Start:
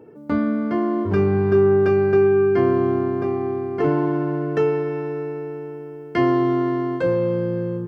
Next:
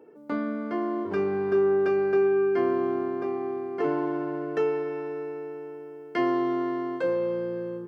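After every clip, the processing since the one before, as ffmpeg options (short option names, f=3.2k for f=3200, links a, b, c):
-af "highpass=290,volume=-5dB"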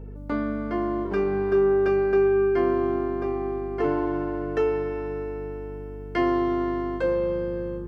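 -af "aeval=exprs='val(0)+0.0112*(sin(2*PI*50*n/s)+sin(2*PI*2*50*n/s)/2+sin(2*PI*3*50*n/s)/3+sin(2*PI*4*50*n/s)/4+sin(2*PI*5*50*n/s)/5)':c=same,volume=2dB"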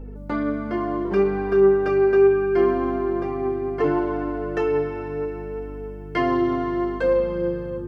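-af "flanger=delay=3.6:depth=4.7:regen=33:speed=0.7:shape=triangular,volume=6.5dB"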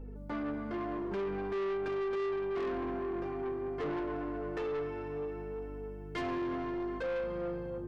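-af "asoftclip=type=tanh:threshold=-24dB,volume=-8dB"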